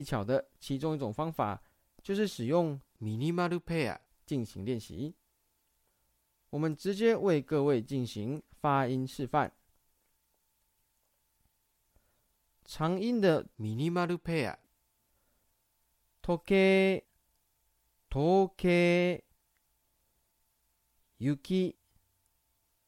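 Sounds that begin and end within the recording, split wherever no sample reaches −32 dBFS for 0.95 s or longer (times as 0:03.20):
0:06.53–0:09.46
0:12.80–0:14.54
0:16.29–0:16.99
0:18.12–0:19.16
0:21.22–0:21.69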